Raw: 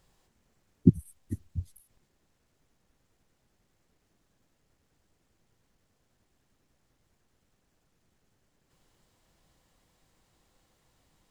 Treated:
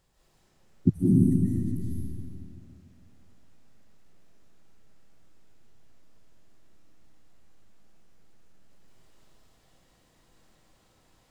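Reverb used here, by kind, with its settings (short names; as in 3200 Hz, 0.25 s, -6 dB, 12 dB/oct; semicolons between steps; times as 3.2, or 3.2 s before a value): digital reverb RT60 2.6 s, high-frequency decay 0.85×, pre-delay 0.115 s, DRR -8 dB; gain -3 dB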